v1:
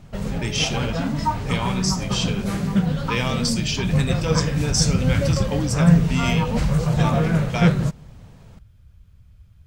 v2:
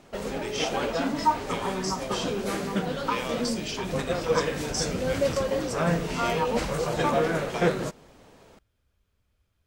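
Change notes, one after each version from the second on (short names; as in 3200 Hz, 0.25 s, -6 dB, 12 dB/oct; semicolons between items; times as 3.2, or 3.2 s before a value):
speech -9.0 dB; master: add resonant low shelf 220 Hz -13.5 dB, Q 1.5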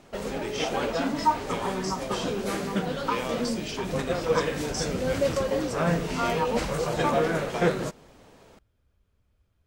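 speech: add tilt shelf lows +3.5 dB, about 1300 Hz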